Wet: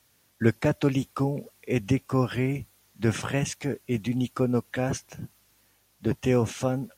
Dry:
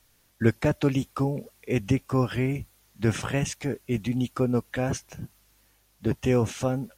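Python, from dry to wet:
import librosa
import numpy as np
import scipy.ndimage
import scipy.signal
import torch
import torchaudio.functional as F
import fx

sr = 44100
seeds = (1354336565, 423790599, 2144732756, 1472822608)

y = scipy.signal.sosfilt(scipy.signal.butter(2, 83.0, 'highpass', fs=sr, output='sos'), x)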